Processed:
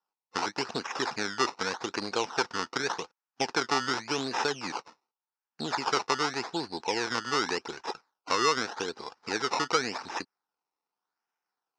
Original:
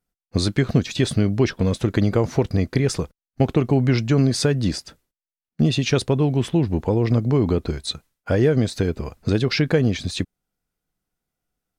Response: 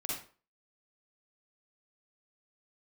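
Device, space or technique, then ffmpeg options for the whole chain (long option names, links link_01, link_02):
circuit-bent sampling toy: -af "acrusher=samples=19:mix=1:aa=0.000001:lfo=1:lforange=19:lforate=0.86,highpass=600,equalizer=frequency=600:width_type=q:width=4:gain=-10,equalizer=frequency=880:width_type=q:width=4:gain=7,equalizer=frequency=1400:width_type=q:width=4:gain=3,equalizer=frequency=2100:width_type=q:width=4:gain=-4,equalizer=frequency=3300:width_type=q:width=4:gain=-5,equalizer=frequency=5400:width_type=q:width=4:gain=9,lowpass=frequency=5900:width=0.5412,lowpass=frequency=5900:width=1.3066,volume=-2dB"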